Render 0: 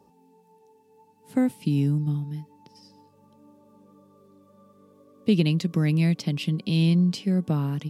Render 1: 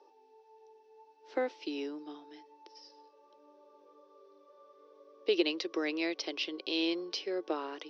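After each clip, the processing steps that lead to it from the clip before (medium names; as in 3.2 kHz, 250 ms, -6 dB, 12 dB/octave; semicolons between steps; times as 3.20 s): Chebyshev band-pass 330–5800 Hz, order 5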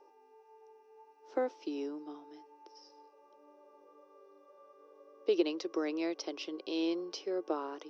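mains buzz 400 Hz, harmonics 7, -73 dBFS 0 dB/octave; high-order bell 2.8 kHz -9 dB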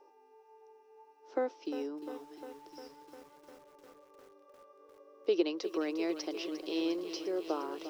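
bit-crushed delay 352 ms, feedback 80%, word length 9-bit, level -11.5 dB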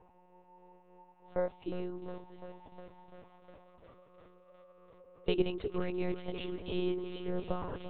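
monotone LPC vocoder at 8 kHz 180 Hz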